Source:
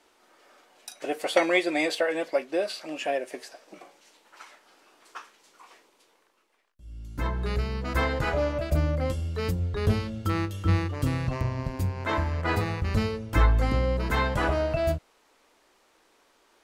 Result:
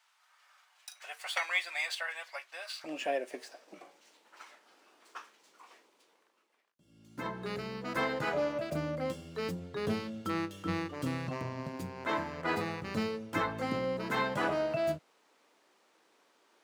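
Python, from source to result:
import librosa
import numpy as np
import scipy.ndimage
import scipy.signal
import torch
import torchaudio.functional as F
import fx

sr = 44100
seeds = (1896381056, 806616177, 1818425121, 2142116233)

y = scipy.signal.medfilt(x, 3)
y = fx.highpass(y, sr, hz=fx.steps((0.0, 960.0), (2.84, 150.0)), slope=24)
y = y * librosa.db_to_amplitude(-4.5)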